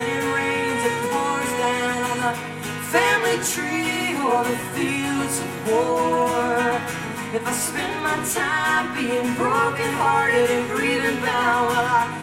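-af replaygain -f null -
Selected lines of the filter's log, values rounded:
track_gain = +3.2 dB
track_peak = 0.437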